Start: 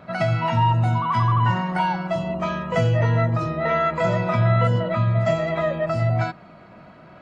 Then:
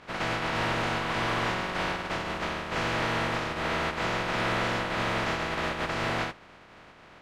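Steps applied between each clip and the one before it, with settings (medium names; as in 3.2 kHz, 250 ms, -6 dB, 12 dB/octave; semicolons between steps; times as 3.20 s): spectral contrast reduction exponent 0.12; hard clipper -19.5 dBFS, distortion -10 dB; low-pass 2.1 kHz 12 dB/octave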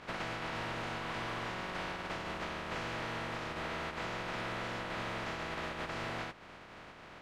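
compression 6:1, threshold -37 dBFS, peak gain reduction 11.5 dB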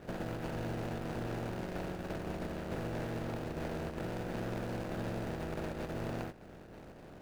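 median filter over 41 samples; trim +5.5 dB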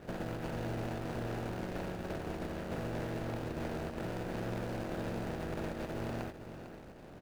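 delay 450 ms -11 dB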